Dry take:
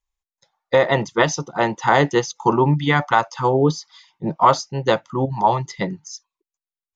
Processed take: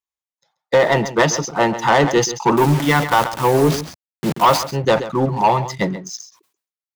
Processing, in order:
0:02.57–0:04.71: hold until the input has moved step −25.5 dBFS
high-pass filter 120 Hz 12 dB per octave
leveller curve on the samples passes 2
slap from a distant wall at 23 metres, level −14 dB
level that may fall only so fast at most 120 dB per second
level −3 dB

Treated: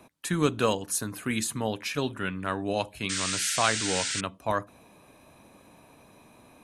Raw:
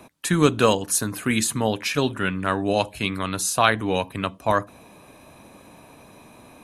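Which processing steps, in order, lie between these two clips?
sound drawn into the spectrogram noise, 0:03.09–0:04.21, 1,300–9,200 Hz −24 dBFS
level −7 dB

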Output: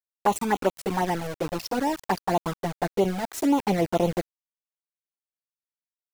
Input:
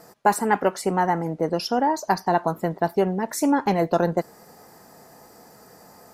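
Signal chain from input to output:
centre clipping without the shift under −26.5 dBFS
flanger swept by the level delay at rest 9.3 ms, full sweep at −16 dBFS

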